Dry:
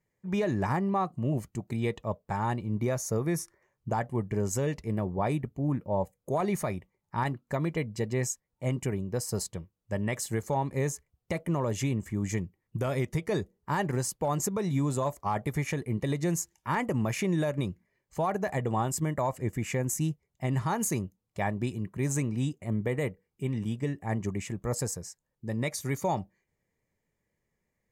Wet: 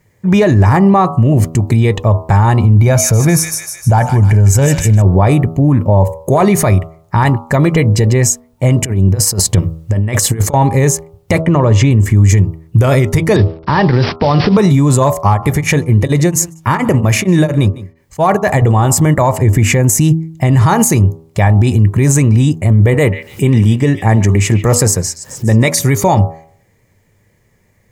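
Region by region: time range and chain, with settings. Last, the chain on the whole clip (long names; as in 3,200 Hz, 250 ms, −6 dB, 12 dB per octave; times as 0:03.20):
0:02.76–0:05.02: comb filter 1.3 ms, depth 41% + delay with a high-pass on its return 154 ms, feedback 54%, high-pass 2,100 Hz, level −5.5 dB
0:08.84–0:10.54: parametric band 270 Hz +3 dB 0.83 octaves + compressor whose output falls as the input rises −36 dBFS, ratio −0.5
0:11.41–0:11.91: high-pass filter 53 Hz + high-frequency loss of the air 110 metres
0:13.36–0:14.57: variable-slope delta modulation 32 kbit/s + bad sample-rate conversion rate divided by 4×, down none, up filtered + multiband upward and downward compressor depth 100%
0:15.27–0:18.62: single-tap delay 154 ms −23 dB + tremolo along a rectified sine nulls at 4.3 Hz
0:22.94–0:25.79: high-pass filter 130 Hz 6 dB per octave + upward compression, threshold −38 dBFS + echo through a band-pass that steps 143 ms, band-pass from 2,400 Hz, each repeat 0.7 octaves, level −11 dB
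whole clip: parametric band 100 Hz +12.5 dB 0.37 octaves; hum removal 80.71 Hz, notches 17; boost into a limiter +24.5 dB; level −1 dB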